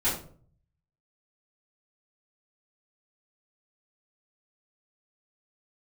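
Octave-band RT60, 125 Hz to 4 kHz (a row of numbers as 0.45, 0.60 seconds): 0.95, 0.60, 0.55, 0.45, 0.35, 0.30 seconds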